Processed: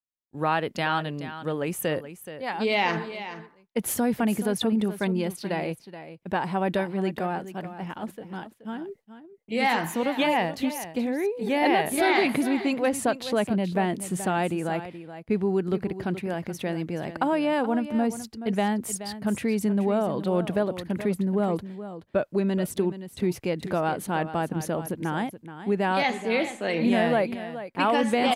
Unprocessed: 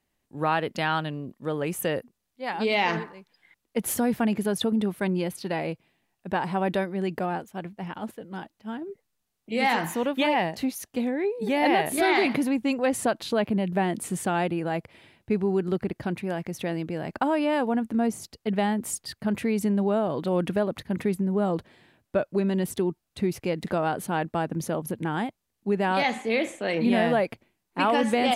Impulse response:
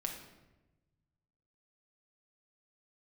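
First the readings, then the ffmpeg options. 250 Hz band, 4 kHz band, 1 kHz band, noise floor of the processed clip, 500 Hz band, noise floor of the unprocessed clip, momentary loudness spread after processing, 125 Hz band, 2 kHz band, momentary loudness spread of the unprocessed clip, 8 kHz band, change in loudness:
0.0 dB, 0.0 dB, 0.0 dB, -56 dBFS, 0.0 dB, -80 dBFS, 12 LU, 0.0 dB, 0.0 dB, 11 LU, 0.0 dB, 0.0 dB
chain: -af "agate=range=0.0224:threshold=0.00631:ratio=3:detection=peak,aecho=1:1:426:0.237"

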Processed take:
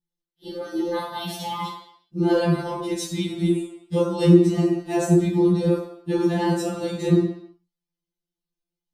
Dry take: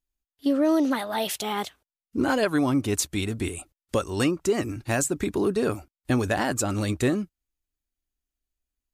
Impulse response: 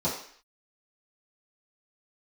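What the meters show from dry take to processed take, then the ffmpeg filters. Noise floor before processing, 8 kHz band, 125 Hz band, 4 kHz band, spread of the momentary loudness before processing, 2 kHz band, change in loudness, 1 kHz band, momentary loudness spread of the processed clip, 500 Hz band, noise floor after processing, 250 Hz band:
under -85 dBFS, -7.0 dB, +7.0 dB, -0.5 dB, 9 LU, -5.5 dB, +3.5 dB, +0.5 dB, 14 LU, +3.5 dB, under -85 dBFS, +4.0 dB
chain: -filter_complex "[0:a]equalizer=f=240:t=o:w=0.87:g=10.5[s0];[1:a]atrim=start_sample=2205,asetrate=37485,aresample=44100[s1];[s0][s1]afir=irnorm=-1:irlink=0,afftfilt=real='re*2.83*eq(mod(b,8),0)':imag='im*2.83*eq(mod(b,8),0)':win_size=2048:overlap=0.75,volume=0.376"

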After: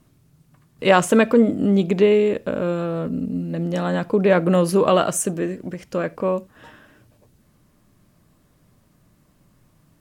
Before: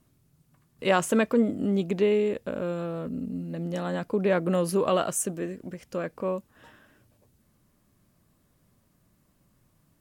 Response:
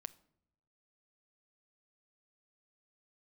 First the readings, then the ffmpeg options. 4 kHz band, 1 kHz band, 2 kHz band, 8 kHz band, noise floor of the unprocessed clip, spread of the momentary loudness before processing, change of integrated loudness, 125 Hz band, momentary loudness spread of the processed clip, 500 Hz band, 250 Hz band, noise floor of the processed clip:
+7.5 dB, +8.0 dB, +7.5 dB, +5.0 dB, -67 dBFS, 11 LU, +7.5 dB, +8.0 dB, 11 LU, +7.5 dB, +7.5 dB, -60 dBFS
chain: -filter_complex "[0:a]asplit=2[s0][s1];[1:a]atrim=start_sample=2205,afade=t=out:st=0.14:d=0.01,atrim=end_sample=6615,highshelf=f=9300:g=-8.5[s2];[s1][s2]afir=irnorm=-1:irlink=0,volume=5.01[s3];[s0][s3]amix=inputs=2:normalize=0,volume=0.631"

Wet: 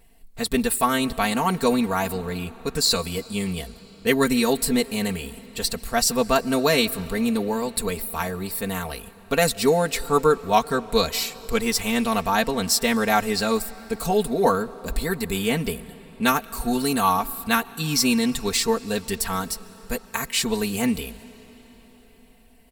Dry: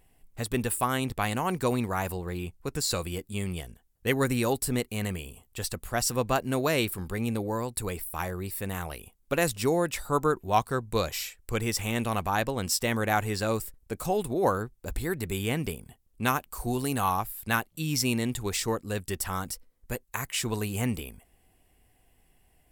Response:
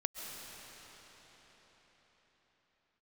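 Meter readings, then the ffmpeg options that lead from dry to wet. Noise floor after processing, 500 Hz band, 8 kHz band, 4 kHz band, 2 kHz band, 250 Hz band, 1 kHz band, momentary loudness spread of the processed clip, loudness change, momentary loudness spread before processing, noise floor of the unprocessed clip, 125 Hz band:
-50 dBFS, +6.5 dB, +6.5 dB, +9.5 dB, +6.0 dB, +7.5 dB, +6.0 dB, 10 LU, +6.5 dB, 9 LU, -66 dBFS, -0.5 dB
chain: -filter_complex "[0:a]equalizer=f=4200:t=o:w=0.3:g=8,aecho=1:1:4.4:0.86,asplit=2[s0][s1];[1:a]atrim=start_sample=2205[s2];[s1][s2]afir=irnorm=-1:irlink=0,volume=0.158[s3];[s0][s3]amix=inputs=2:normalize=0,volume=1.33"

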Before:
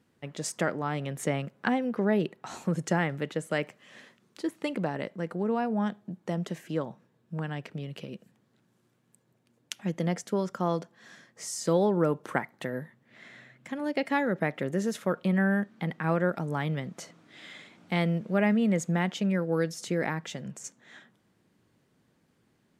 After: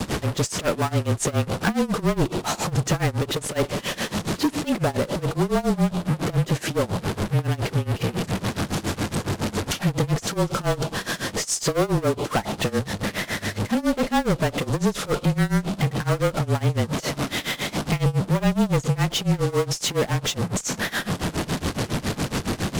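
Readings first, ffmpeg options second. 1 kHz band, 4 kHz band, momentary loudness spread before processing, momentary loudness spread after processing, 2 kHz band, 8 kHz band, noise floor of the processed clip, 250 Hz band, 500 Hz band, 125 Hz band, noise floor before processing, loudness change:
+6.5 dB, +14.5 dB, 16 LU, 5 LU, +6.0 dB, +12.5 dB, -41 dBFS, +5.5 dB, +5.5 dB, +10.5 dB, -70 dBFS, +6.0 dB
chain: -filter_complex "[0:a]aeval=exprs='val(0)+0.5*0.0299*sgn(val(0))':c=same,lowpass=8500,adynamicequalizer=threshold=0.00501:dfrequency=1900:dqfactor=1.2:tfrequency=1900:tqfactor=1.2:attack=5:release=100:ratio=0.375:range=3.5:mode=cutabove:tftype=bell,asplit=2[s0][s1];[s1]acompressor=threshold=0.0178:ratio=6,volume=0.794[s2];[s0][s2]amix=inputs=2:normalize=0,asoftclip=type=hard:threshold=0.075,acrossover=split=4400[s3][s4];[s3]acrusher=bits=5:mix=0:aa=0.5[s5];[s5][s4]amix=inputs=2:normalize=0,afreqshift=-27,tremolo=f=7.2:d=0.92,volume=2.66"

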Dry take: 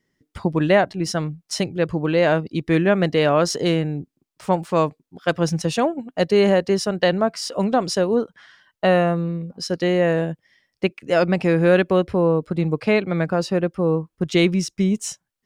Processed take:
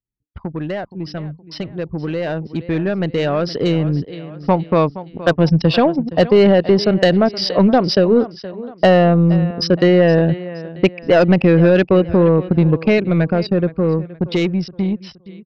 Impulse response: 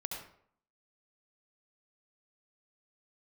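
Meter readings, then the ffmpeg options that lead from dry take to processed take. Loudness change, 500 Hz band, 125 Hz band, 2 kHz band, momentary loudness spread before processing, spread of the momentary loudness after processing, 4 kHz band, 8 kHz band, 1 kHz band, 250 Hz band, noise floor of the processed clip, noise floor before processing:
+5.0 dB, +4.0 dB, +6.5 dB, +1.5 dB, 9 LU, 15 LU, +3.5 dB, no reading, +2.5 dB, +5.5 dB, -44 dBFS, -79 dBFS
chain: -af "highpass=50,bandreject=f=4100:w=30,acompressor=threshold=0.0708:ratio=2,anlmdn=10,adynamicequalizer=threshold=0.0141:dfrequency=990:dqfactor=0.72:tfrequency=990:tqfactor=0.72:attack=5:release=100:ratio=0.375:range=2:mode=cutabove:tftype=bell,aresample=11025,aresample=44100,lowshelf=f=69:g=9.5,aecho=1:1:470|940|1410:0.126|0.0504|0.0201,aeval=exprs='(tanh(6.31*val(0)+0.1)-tanh(0.1))/6.31':c=same,dynaudnorm=f=440:g=17:m=5.62"

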